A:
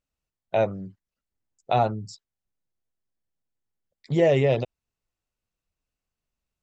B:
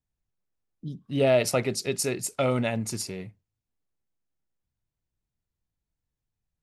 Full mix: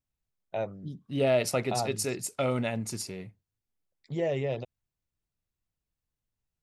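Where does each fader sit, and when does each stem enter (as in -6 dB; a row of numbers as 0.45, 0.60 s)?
-10.0, -3.5 dB; 0.00, 0.00 s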